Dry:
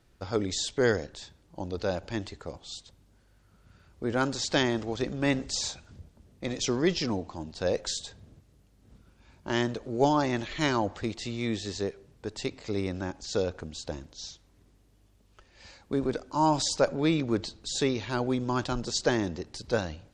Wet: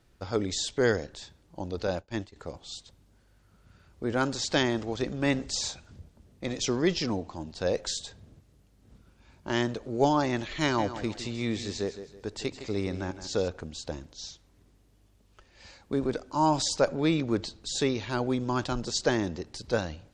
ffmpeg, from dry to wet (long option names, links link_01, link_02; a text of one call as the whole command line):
ffmpeg -i in.wav -filter_complex "[0:a]asettb=1/sr,asplit=3[link_01][link_02][link_03];[link_01]atrim=end=1.874[link_04];[link_02]atrim=start=1.87:end=2.36,asetpts=PTS-STARTPTS,afade=type=in:duration=0.004:curve=qsin,afade=type=out:start_time=0.486:duration=0.004:curve=qsin,agate=range=-33dB:threshold=-34dB:ratio=3:release=100:detection=peak[link_05];[link_03]atrim=start=2.356[link_06];[link_04][link_05]acrossfade=duration=0.004:curve1=hsin:curve2=qsin[link_07];[link_07][link_06]acrossfade=duration=0.004:curve1=qsin:curve2=hsin,asettb=1/sr,asplit=3[link_08][link_09][link_10];[link_08]atrim=end=10.624[link_11];[link_09]atrim=start=10.62:end=13.48,asetpts=PTS-STARTPTS,afade=type=in:duration=0.004:curve=qsin,afade=type=out:start_time=2.856:duration=0.004:curve=qsin,aecho=1:1:160|320|480|640:0.251|0.0879|0.0308|0.0108,atrim=end_sample=126126[link_12];[link_10]atrim=start=13.476[link_13];[link_11][link_12]acrossfade=duration=0.004:curve1=hsin:curve2=qsin[link_14];[link_14][link_13]acrossfade=duration=0.004:curve1=qsin:curve2=hsin" out.wav